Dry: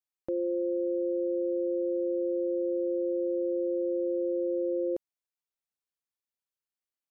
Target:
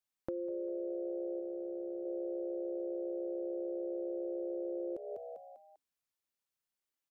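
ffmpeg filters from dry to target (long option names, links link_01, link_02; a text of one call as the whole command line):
ffmpeg -i in.wav -filter_complex "[0:a]asplit=5[link_01][link_02][link_03][link_04][link_05];[link_02]adelay=198,afreqshift=67,volume=-11dB[link_06];[link_03]adelay=396,afreqshift=134,volume=-18.3dB[link_07];[link_04]adelay=594,afreqshift=201,volume=-25.7dB[link_08];[link_05]adelay=792,afreqshift=268,volume=-33dB[link_09];[link_01][link_06][link_07][link_08][link_09]amix=inputs=5:normalize=0,acompressor=threshold=-38dB:ratio=6,asplit=3[link_10][link_11][link_12];[link_10]afade=type=out:start_time=1.39:duration=0.02[link_13];[link_11]asubboost=boost=10:cutoff=170,afade=type=in:start_time=1.39:duration=0.02,afade=type=out:start_time=2.04:duration=0.02[link_14];[link_12]afade=type=in:start_time=2.04:duration=0.02[link_15];[link_13][link_14][link_15]amix=inputs=3:normalize=0,volume=1.5dB" out.wav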